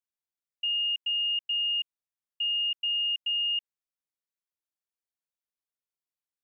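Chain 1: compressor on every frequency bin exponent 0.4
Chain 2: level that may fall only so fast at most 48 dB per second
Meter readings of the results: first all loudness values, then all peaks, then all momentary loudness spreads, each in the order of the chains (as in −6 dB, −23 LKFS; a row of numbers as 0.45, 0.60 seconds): −26.5, −27.0 LKFS; −23.0, −23.0 dBFS; 5, 5 LU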